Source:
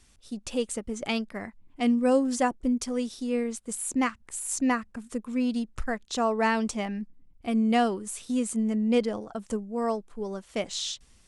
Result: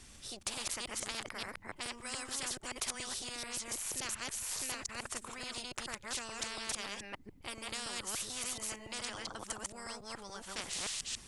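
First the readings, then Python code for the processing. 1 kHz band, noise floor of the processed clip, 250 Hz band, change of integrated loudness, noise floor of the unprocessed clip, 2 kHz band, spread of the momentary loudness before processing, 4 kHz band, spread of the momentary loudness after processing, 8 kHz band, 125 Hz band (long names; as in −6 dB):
−14.0 dB, −56 dBFS, −25.0 dB, −11.0 dB, −59 dBFS, −6.5 dB, 12 LU, −1.0 dB, 7 LU, −1.5 dB, can't be measured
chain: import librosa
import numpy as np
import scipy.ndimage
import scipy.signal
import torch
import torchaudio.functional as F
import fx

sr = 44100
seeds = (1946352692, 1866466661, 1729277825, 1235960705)

y = fx.reverse_delay(x, sr, ms=143, wet_db=-1)
y = fx.spectral_comp(y, sr, ratio=10.0)
y = y * 10.0 ** (-8.0 / 20.0)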